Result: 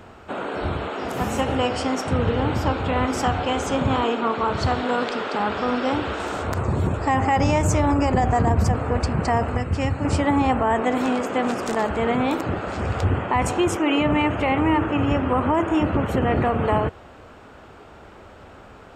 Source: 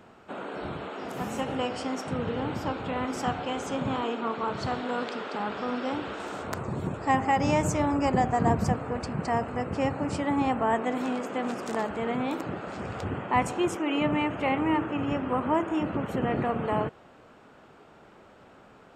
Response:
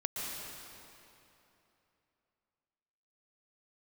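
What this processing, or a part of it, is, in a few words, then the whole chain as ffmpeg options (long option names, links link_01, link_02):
car stereo with a boomy subwoofer: -filter_complex "[0:a]asettb=1/sr,asplit=3[link_01][link_02][link_03];[link_01]atrim=end=9.574[link_04];[link_02]atrim=start=9.57:end=10.05,asetpts=PTS-STARTPTS,afade=type=in:duration=0.004:curve=qsin,afade=type=out:start_time=0.476:duration=0.004:curve=qsin,equalizer=frequency=620:width_type=o:width=2.7:gain=-8[link_05];[link_03]atrim=start=10.046[link_06];[link_04][link_05]acrossfade=duration=0.004:curve1=hsin:curve2=qsin[link_07];[link_07][link_06]acrossfade=duration=0.004:curve1=qsin:curve2=hsin,lowshelf=frequency=110:width_type=q:width=1.5:gain=8,alimiter=limit=-19.5dB:level=0:latency=1:release=44,volume=8.5dB"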